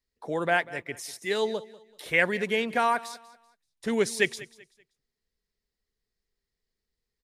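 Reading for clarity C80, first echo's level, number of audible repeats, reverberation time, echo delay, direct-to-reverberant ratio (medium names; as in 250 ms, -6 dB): no reverb, -19.0 dB, 2, no reverb, 192 ms, no reverb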